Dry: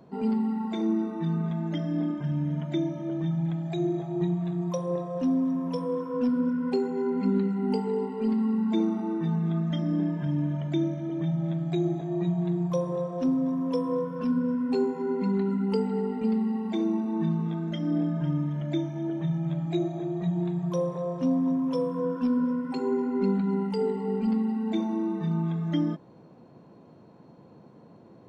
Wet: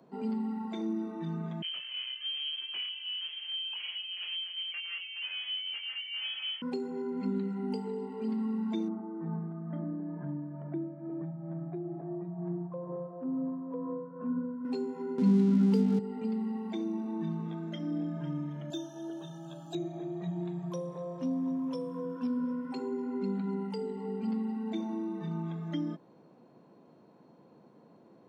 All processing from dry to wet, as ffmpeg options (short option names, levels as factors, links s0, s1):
-filter_complex "[0:a]asettb=1/sr,asplit=3[s0][s1][s2];[s0]atrim=end=1.624[s3];[s1]atrim=start=1.62:end=6.62,asetpts=PTS-STARTPTS,afade=t=in:d=0.004:c=qsin,afade=t=out:st=4.996:d=0.004:c=qsin,aeval=exprs='0.0596*(abs(mod(val(0)/0.0596+3,4)-2)-1)':c=same,flanger=delay=18:depth=3.9:speed=2,lowpass=f=2800:t=q:w=0.5098,lowpass=f=2800:t=q:w=0.6013,lowpass=f=2800:t=q:w=0.9,lowpass=f=2800:t=q:w=2.563,afreqshift=-3300[s4];[s2]atrim=start=6.616[s5];[s3][s4]acrossfade=d=0.004:c1=hsin:c2=qsin[s6];[s6][s5]acrossfade=d=0.004:c1=qsin:c2=hsin,asettb=1/sr,asplit=3[s7][s8][s9];[s7]atrim=end=8.884[s10];[s8]atrim=start=8.88:end=14.65,asetpts=PTS-STARTPTS,afade=t=in:d=0.004:c=qsin,afade=t=out:st=5.766:d=0.004:c=qsin,lowpass=f=1500:w=0.5412,lowpass=f=1500:w=1.3066,tremolo=f=2.2:d=0.49[s11];[s9]atrim=start=14.646[s12];[s10][s11]acrossfade=d=0.004:c1=hsin:c2=qsin[s13];[s13][s12]acrossfade=d=0.004:c1=qsin:c2=hsin,asettb=1/sr,asplit=3[s14][s15][s16];[s14]atrim=end=15.184[s17];[s15]atrim=start=15.18:end=15.99,asetpts=PTS-STARTPTS,afade=t=in:d=0.004:c=qsin,afade=t=out:st=0.806:d=0.004:c=qsin,aemphasis=mode=reproduction:type=bsi,acontrast=72,aeval=exprs='sgn(val(0))*max(abs(val(0))-0.0178,0)':c=same[s18];[s16]atrim=start=15.986[s19];[s17][s18]acrossfade=d=0.004:c1=hsin:c2=qsin[s20];[s20][s19]acrossfade=d=0.004:c1=qsin:c2=hsin,asettb=1/sr,asplit=3[s21][s22][s23];[s21]atrim=end=18.704[s24];[s22]atrim=start=18.7:end=19.75,asetpts=PTS-STARTPTS,afade=t=in:d=0.004:c=qsin,afade=t=out:st=1.046:d=0.004:c=qsin,asuperstop=centerf=2100:order=20:qfactor=2.8,bass=f=250:g=-12,treble=f=4000:g=14[s25];[s23]atrim=start=19.746[s26];[s24][s25]acrossfade=d=0.004:c1=hsin:c2=qsin[s27];[s27][s26]acrossfade=d=0.004:c1=qsin:c2=hsin,acrossover=split=300|3000[s28][s29][s30];[s29]acompressor=threshold=0.0224:ratio=6[s31];[s28][s31][s30]amix=inputs=3:normalize=0,highpass=180,volume=0.562"